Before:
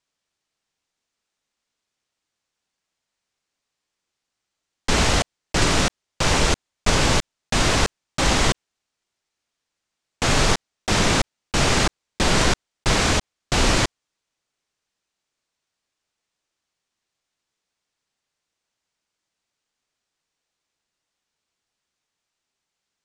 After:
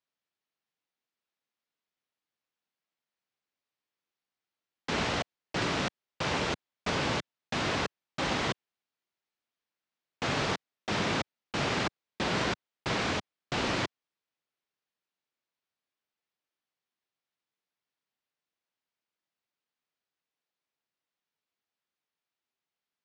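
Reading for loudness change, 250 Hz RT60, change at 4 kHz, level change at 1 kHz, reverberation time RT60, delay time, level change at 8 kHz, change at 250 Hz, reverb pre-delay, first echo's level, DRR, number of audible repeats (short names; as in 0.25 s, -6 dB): -11.0 dB, none, -11.5 dB, -9.0 dB, none, none, -18.5 dB, -9.5 dB, none, none, none, none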